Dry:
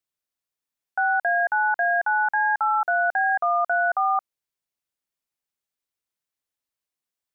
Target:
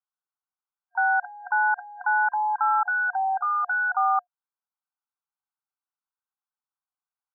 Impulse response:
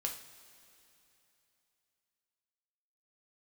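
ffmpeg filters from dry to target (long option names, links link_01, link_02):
-filter_complex "[0:a]asplit=2[link_01][link_02];[link_02]asetrate=52444,aresample=44100,atempo=0.840896,volume=-18dB[link_03];[link_01][link_03]amix=inputs=2:normalize=0,afftfilt=real='re*between(b*sr/4096,720,1600)':imag='im*between(b*sr/4096,720,1600)':win_size=4096:overlap=0.75"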